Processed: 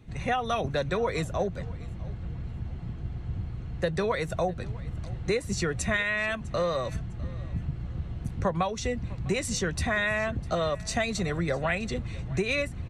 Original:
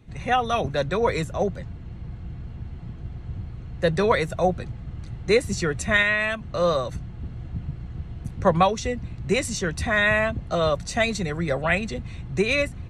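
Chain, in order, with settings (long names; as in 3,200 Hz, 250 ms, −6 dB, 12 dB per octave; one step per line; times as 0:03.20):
downward compressor 6 to 1, threshold −24 dBFS, peak gain reduction 11 dB
repeating echo 653 ms, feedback 30%, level −21.5 dB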